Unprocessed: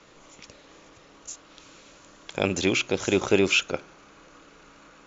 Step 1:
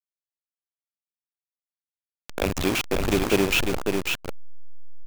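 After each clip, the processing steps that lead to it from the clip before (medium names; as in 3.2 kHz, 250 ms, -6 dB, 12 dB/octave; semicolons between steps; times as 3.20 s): send-on-delta sampling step -20 dBFS; on a send: delay 547 ms -4.5 dB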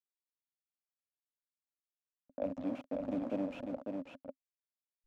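level-controlled noise filter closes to 380 Hz, open at -21 dBFS; two resonant band-passes 390 Hz, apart 1.1 oct; trim -3.5 dB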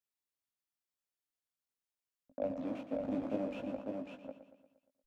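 doubling 19 ms -5 dB; on a send: feedback delay 117 ms, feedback 55%, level -11 dB; on the sum: trim -1 dB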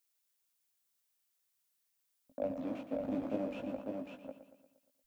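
added noise blue -80 dBFS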